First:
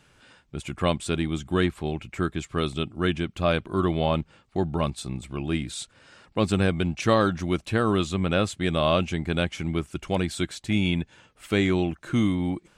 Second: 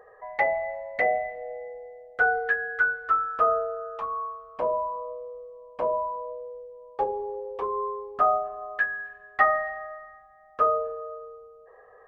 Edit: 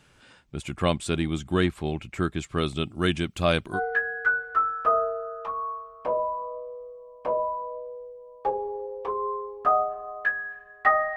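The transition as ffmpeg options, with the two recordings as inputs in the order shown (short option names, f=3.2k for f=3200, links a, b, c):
-filter_complex "[0:a]asettb=1/sr,asplit=3[a][b][c];[a]atrim=end=2.834[d];[b]atrim=start=2.83:end=3.8,asetpts=PTS-STARTPTS,afade=t=in:d=0.004:c=qsin,afade=t=out:st=0.966:d=0.004:c=qsin,highshelf=f=4.7k:g=9.5[e];[c]atrim=start=3.796[f];[d][e]acrossfade=d=0.004:c1=hsin:c2=qsin[g];[g][f]acrossfade=d=0.004:c1=qsin:c2=hsin,apad=whole_dur=11.16,atrim=end=11.16,atrim=end=3.8,asetpts=PTS-STARTPTS[h];[1:a]atrim=start=2.26:end=9.7,asetpts=PTS-STARTPTS[i];[h][i]acrossfade=d=0.08:c1=tri:c2=tri"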